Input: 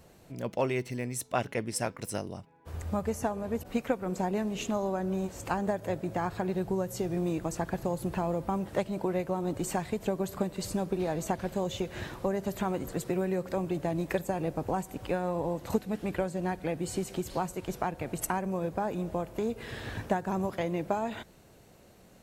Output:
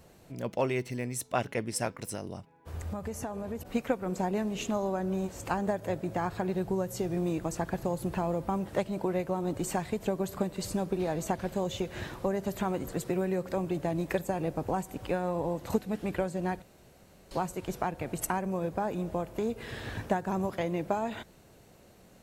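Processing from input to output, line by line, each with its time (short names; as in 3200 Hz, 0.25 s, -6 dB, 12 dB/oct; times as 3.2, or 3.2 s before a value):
2.01–3.63 compressor 4:1, threshold -32 dBFS
16.62–17.31 room tone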